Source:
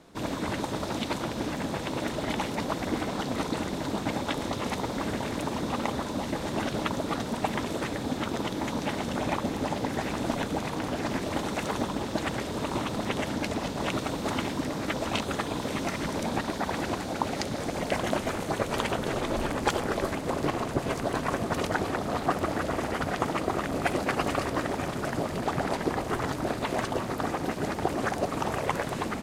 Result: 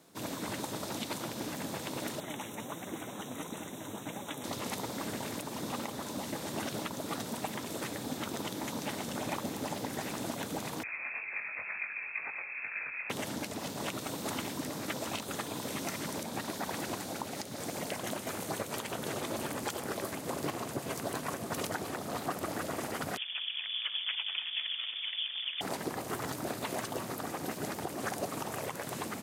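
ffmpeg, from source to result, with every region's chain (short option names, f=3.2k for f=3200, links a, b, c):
-filter_complex "[0:a]asettb=1/sr,asplit=3[a][b][c];[a]atrim=end=2.204[d];[b]atrim=start=2.2:end=4.44,asetpts=PTS-STARTPTS,afade=t=in:d=0.004:c=qsin,afade=t=out:st=2.236:d=0.004:c=qsin,flanger=delay=4.7:depth=5.3:regen=62:speed=1.5:shape=triangular,asuperstop=centerf=4700:order=12:qfactor=3[e];[c]atrim=start=4.436[f];[d][e]acrossfade=d=0.004:c1=hsin:c2=qsin[g];[g][f]acrossfade=d=0.004:c1=qsin:c2=hsin,asettb=1/sr,asplit=3[h][i][j];[h]atrim=end=10.834[k];[i]atrim=start=10.83:end=13.1,asetpts=PTS-STARTPTS,afade=t=in:d=0.004:c=qsin,afade=t=out:st=2.266:d=0.004:c=qsin,lowpass=f=2.3k:t=q:w=0.5098,lowpass=f=2.3k:t=q:w=0.6013,lowpass=f=2.3k:t=q:w=0.9,lowpass=f=2.3k:t=q:w=2.563,afreqshift=-2700,flanger=delay=18.5:depth=3.6:speed=2.1[l];[j]atrim=start=13.096[m];[k][l]acrossfade=d=0.004:c1=hsin:c2=qsin[n];[n][m]acrossfade=d=0.004:c1=qsin:c2=hsin,asettb=1/sr,asplit=3[o][p][q];[o]atrim=end=23.174[r];[p]atrim=start=23.17:end=25.61,asetpts=PTS-STARTPTS,afade=t=in:d=0.004:c=qsin,afade=t=out:st=2.436:d=0.004:c=qsin,highpass=210,highshelf=f=2.2k:g=-9,lowpass=f=3.1k:t=q:w=0.5098,lowpass=f=3.1k:t=q:w=0.6013,lowpass=f=3.1k:t=q:w=0.9,lowpass=f=3.1k:t=q:w=2.563,afreqshift=-3700[s];[q]atrim=start=25.606[t];[r][s]acrossfade=d=0.004:c1=hsin:c2=qsin[u];[u][t]acrossfade=d=0.004:c1=qsin:c2=hsin,highpass=f=93:w=0.5412,highpass=f=93:w=1.3066,aemphasis=mode=production:type=50fm,alimiter=limit=-15.5dB:level=0:latency=1:release=225,volume=-7dB"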